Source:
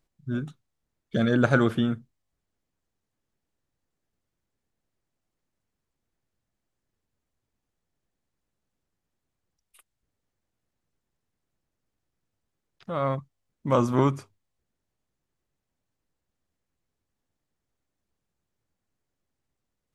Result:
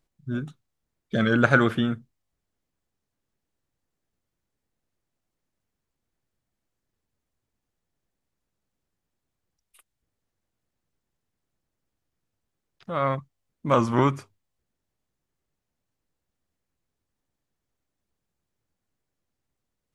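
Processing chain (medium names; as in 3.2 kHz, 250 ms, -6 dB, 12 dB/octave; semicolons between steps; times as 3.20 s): dynamic bell 1.9 kHz, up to +7 dB, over -39 dBFS, Q 0.8; warped record 33 1/3 rpm, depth 100 cents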